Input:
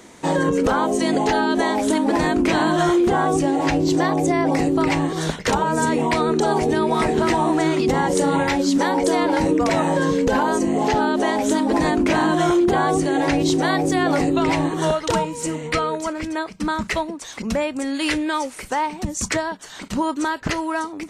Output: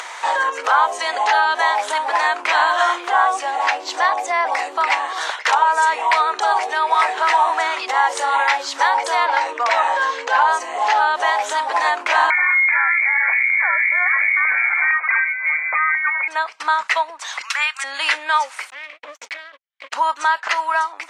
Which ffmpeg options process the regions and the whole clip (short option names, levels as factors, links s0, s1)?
-filter_complex "[0:a]asettb=1/sr,asplit=3[s0][s1][s2];[s0]atrim=end=9.264[s3];[s1]atrim=start=9.26:end=10.49,asetpts=PTS-STARTPTS,afade=t=in:d=0.004:c=qsin,afade=t=out:st=1.226:d=0.004:c=qsin,lowpass=7300,equalizer=f=150:t=o:w=0.3:g=-12.5[s4];[s2]atrim=start=10.486[s5];[s3][s4]acrossfade=d=0.004:c1=hsin:c2=qsin[s6];[s6][s5]acrossfade=d=0.004:c1=qsin:c2=hsin,asettb=1/sr,asplit=3[s7][s8][s9];[s7]atrim=end=12.304[s10];[s8]atrim=start=12.3:end=16.28,asetpts=PTS-STARTPTS,afade=t=in:d=0.004:c=qsin,afade=t=out:st=3.976:d=0.004:c=qsin,acompressor=threshold=0.1:ratio=6:attack=3.2:release=140:knee=1:detection=peak,lowpass=f=2100:t=q:w=0.5098,lowpass=f=2100:t=q:w=0.6013,lowpass=f=2100:t=q:w=0.9,lowpass=f=2100:t=q:w=2.563,afreqshift=-2500,aeval=exprs='val(0)+0.00178*(sin(2*PI*60*n/s)+sin(2*PI*2*60*n/s)/2+sin(2*PI*3*60*n/s)/3+sin(2*PI*4*60*n/s)/4+sin(2*PI*5*60*n/s)/5)':c=same[s11];[s9]atrim=start=16.276[s12];[s10][s11]acrossfade=d=0.004:c1=hsin:c2=qsin[s13];[s13][s12]acrossfade=d=0.004:c1=qsin:c2=hsin,asettb=1/sr,asplit=3[s14][s15][s16];[s14]atrim=end=17.414[s17];[s15]atrim=start=17.41:end=17.84,asetpts=PTS-STARTPTS,afade=t=in:d=0.004:c=qsin,afade=t=out:st=0.426:d=0.004:c=qsin,highpass=f=1300:w=0.5412,highpass=f=1300:w=1.3066,acontrast=63[s18];[s16]atrim=start=17.836[s19];[s17][s18]acrossfade=d=0.004:c1=hsin:c2=qsin[s20];[s20][s19]acrossfade=d=0.004:c1=qsin:c2=hsin,asettb=1/sr,asplit=3[s21][s22][s23];[s21]atrim=end=18.704[s24];[s22]atrim=start=18.7:end=19.93,asetpts=PTS-STARTPTS,afade=t=in:d=0.004:c=qsin,afade=t=out:st=1.226:d=0.004:c=qsin,asplit=3[s25][s26][s27];[s25]bandpass=f=270:t=q:w=8,volume=1[s28];[s26]bandpass=f=2290:t=q:w=8,volume=0.501[s29];[s27]bandpass=f=3010:t=q:w=8,volume=0.355[s30];[s28][s29][s30]amix=inputs=3:normalize=0,agate=range=0.001:threshold=0.00631:ratio=16:release=100:detection=peak,aeval=exprs='max(val(0),0)':c=same[s31];[s23]atrim=start=19.926[s32];[s24][s31]acrossfade=d=0.004:c1=hsin:c2=qsin[s33];[s33][s32]acrossfade=d=0.004:c1=qsin:c2=hsin,highpass=f=860:w=0.5412,highpass=f=860:w=1.3066,aemphasis=mode=reproduction:type=75fm,acompressor=mode=upward:threshold=0.0282:ratio=2.5,volume=2.82"